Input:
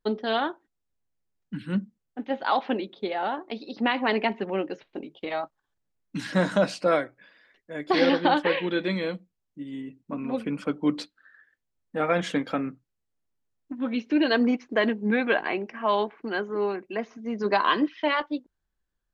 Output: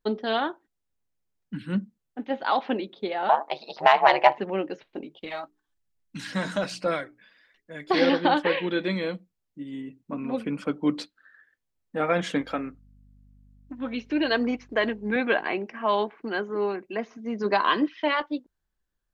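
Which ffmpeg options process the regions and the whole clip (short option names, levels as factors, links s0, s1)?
-filter_complex "[0:a]asettb=1/sr,asplit=3[s0][s1][s2];[s0]atrim=end=3.294[s3];[s1]atrim=start=3.29:end=4.38,asetpts=PTS-STARTPTS,afade=t=in:d=0.004:c=qsin,afade=t=out:st=1.086:d=0.004:c=qsin,highpass=f=750:t=q:w=3.6,acontrast=54,aeval=exprs='val(0)*sin(2*PI*72*n/s)':c=same[s4];[s2]atrim=start=4.376[s5];[s3][s4]acrossfade=d=0.004:c1=hsin:c2=qsin[s6];[s6][s5]acrossfade=d=0.004:c1=qsin:c2=hsin,asettb=1/sr,asplit=3[s7][s8][s9];[s7]atrim=end=5.184[s10];[s8]atrim=start=5.18:end=7.91,asetpts=PTS-STARTPTS,afade=t=in:d=0.004:c=qsin,afade=t=out:st=2.726:d=0.004:c=qsin,equalizer=f=490:w=0.42:g=-6.5,bandreject=f=60:t=h:w=6,bandreject=f=120:t=h:w=6,bandreject=f=180:t=h:w=6,bandreject=f=240:t=h:w=6,bandreject=f=300:t=h:w=6,bandreject=f=360:t=h:w=6,bandreject=f=420:t=h:w=6,aphaser=in_gain=1:out_gain=1:delay=4.6:decay=0.34:speed=1.2:type=sinusoidal[s11];[s9]atrim=start=7.906[s12];[s10][s11]acrossfade=d=0.004:c1=hsin:c2=qsin[s13];[s13][s12]acrossfade=d=0.004:c1=qsin:c2=hsin,asettb=1/sr,asplit=3[s14][s15][s16];[s14]atrim=end=12.414[s17];[s15]atrim=start=12.41:end=15.16,asetpts=PTS-STARTPTS,afade=t=in:d=0.004:c=qsin,afade=t=out:st=2.746:d=0.004:c=qsin,lowshelf=f=180:g=-11.5,aeval=exprs='val(0)+0.002*(sin(2*PI*50*n/s)+sin(2*PI*2*50*n/s)/2+sin(2*PI*3*50*n/s)/3+sin(2*PI*4*50*n/s)/4+sin(2*PI*5*50*n/s)/5)':c=same[s18];[s16]atrim=start=15.156[s19];[s17][s18]acrossfade=d=0.004:c1=hsin:c2=qsin[s20];[s20][s19]acrossfade=d=0.004:c1=qsin:c2=hsin"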